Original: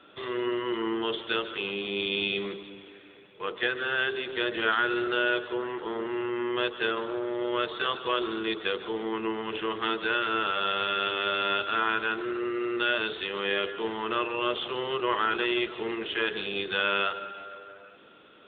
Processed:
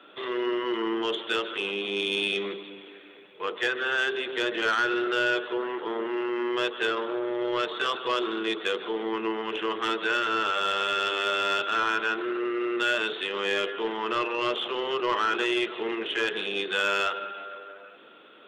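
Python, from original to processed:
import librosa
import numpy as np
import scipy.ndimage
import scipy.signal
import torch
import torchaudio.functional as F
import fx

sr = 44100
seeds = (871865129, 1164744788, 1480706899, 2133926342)

y = scipy.signal.sosfilt(scipy.signal.butter(2, 250.0, 'highpass', fs=sr, output='sos'), x)
y = 10.0 ** (-20.0 / 20.0) * np.tanh(y / 10.0 ** (-20.0 / 20.0))
y = y * librosa.db_to_amplitude(3.0)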